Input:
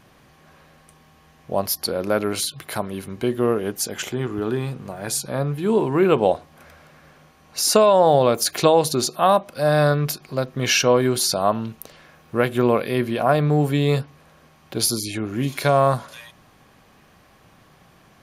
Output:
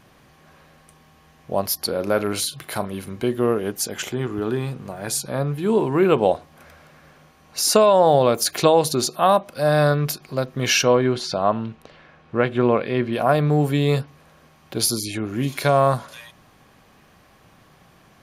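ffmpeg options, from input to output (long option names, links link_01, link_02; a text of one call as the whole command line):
ffmpeg -i in.wav -filter_complex "[0:a]asettb=1/sr,asplit=3[link_01][link_02][link_03];[link_01]atrim=end=1.884[link_04];[link_02]atrim=start=1.88:end=3.25,asetpts=PTS-STARTPTS,afade=type=in:duration=0.004:curve=qsin,afade=type=out:start_time=1.366:duration=0.004:curve=qsin,asplit=2[link_05][link_06];[link_06]adelay=40,volume=-13dB[link_07];[link_05][link_07]amix=inputs=2:normalize=0,atrim=end_sample=60417[link_08];[link_03]atrim=start=3.246[link_09];[link_04][link_08]acrossfade=duration=0.004:curve1=hsin:curve2=qsin[link_10];[link_10][link_09]acrossfade=duration=0.004:curve1=qsin:curve2=hsin,asettb=1/sr,asplit=3[link_11][link_12][link_13];[link_11]atrim=end=10.954[link_14];[link_12]atrim=start=10.95:end=13.13,asetpts=PTS-STARTPTS,afade=type=in:duration=0.004:curve=qsin,afade=type=out:start_time=2.176:duration=0.004:curve=qsin,lowpass=3500[link_15];[link_13]atrim=start=13.126[link_16];[link_14][link_15]acrossfade=duration=0.004:curve1=hsin:curve2=qsin[link_17];[link_17][link_16]acrossfade=duration=0.004:curve1=qsin:curve2=hsin" out.wav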